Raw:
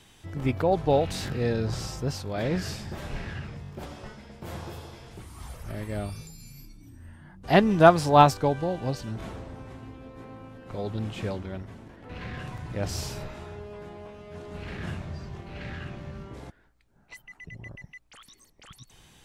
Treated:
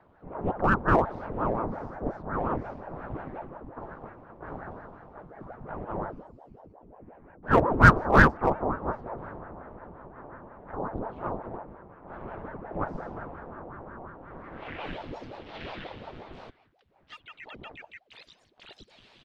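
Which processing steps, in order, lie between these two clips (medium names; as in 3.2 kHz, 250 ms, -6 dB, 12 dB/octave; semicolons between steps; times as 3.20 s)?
low-pass sweep 800 Hz -> 3.2 kHz, 14.18–15.02 s; harmony voices -3 st -12 dB, +4 st -7 dB; in parallel at -11 dB: wavefolder -13 dBFS; on the sum: ring modulator with a swept carrier 430 Hz, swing 85%, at 5.6 Hz; trim -4 dB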